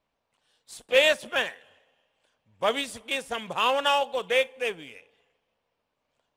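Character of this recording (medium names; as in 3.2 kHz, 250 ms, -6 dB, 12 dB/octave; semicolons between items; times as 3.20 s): noise floor -80 dBFS; spectral tilt -1.5 dB/octave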